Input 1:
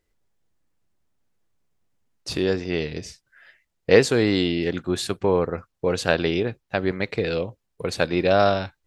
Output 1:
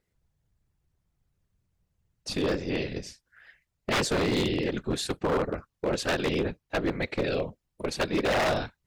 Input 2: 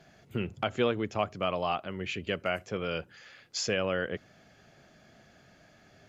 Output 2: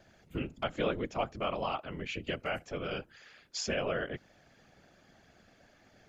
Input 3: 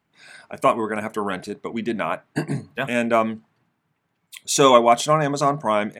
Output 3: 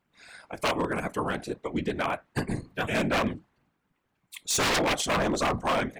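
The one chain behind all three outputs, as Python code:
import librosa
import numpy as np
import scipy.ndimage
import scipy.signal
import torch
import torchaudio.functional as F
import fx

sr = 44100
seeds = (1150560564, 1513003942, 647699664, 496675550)

y = fx.whisperise(x, sr, seeds[0])
y = 10.0 ** (-16.0 / 20.0) * (np.abs((y / 10.0 ** (-16.0 / 20.0) + 3.0) % 4.0 - 2.0) - 1.0)
y = y * 10.0 ** (-3.5 / 20.0)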